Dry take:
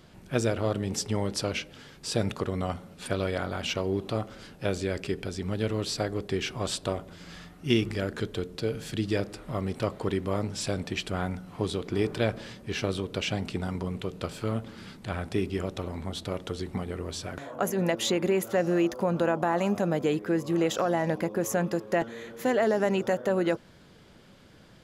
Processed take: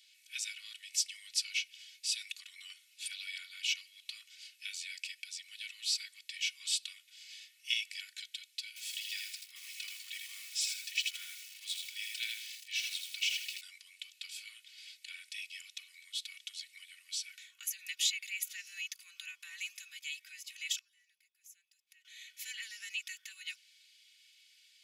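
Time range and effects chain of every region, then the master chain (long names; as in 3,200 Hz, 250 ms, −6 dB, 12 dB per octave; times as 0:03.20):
0:08.68–0:13.61: parametric band 170 Hz +11 dB 0.46 octaves + feedback echo at a low word length 81 ms, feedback 35%, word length 7 bits, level −3 dB
0:20.78–0:22.05: high-shelf EQ 8,200 Hz +6.5 dB + gate with flip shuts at −30 dBFS, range −25 dB
whole clip: elliptic high-pass filter 2,300 Hz, stop band 70 dB; comb filter 2.7 ms, depth 84%; level −1.5 dB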